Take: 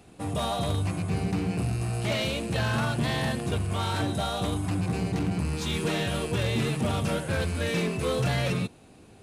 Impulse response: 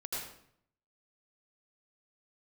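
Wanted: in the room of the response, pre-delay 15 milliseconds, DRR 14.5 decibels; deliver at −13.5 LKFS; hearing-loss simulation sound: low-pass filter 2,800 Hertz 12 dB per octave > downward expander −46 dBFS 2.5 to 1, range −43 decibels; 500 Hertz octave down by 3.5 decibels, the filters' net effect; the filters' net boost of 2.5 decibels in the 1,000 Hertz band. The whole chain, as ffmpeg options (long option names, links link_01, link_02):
-filter_complex "[0:a]equalizer=frequency=500:width_type=o:gain=-6,equalizer=frequency=1000:width_type=o:gain=5.5,asplit=2[link_01][link_02];[1:a]atrim=start_sample=2205,adelay=15[link_03];[link_02][link_03]afir=irnorm=-1:irlink=0,volume=-16.5dB[link_04];[link_01][link_04]amix=inputs=2:normalize=0,lowpass=2800,agate=range=-43dB:threshold=-46dB:ratio=2.5,volume=15.5dB"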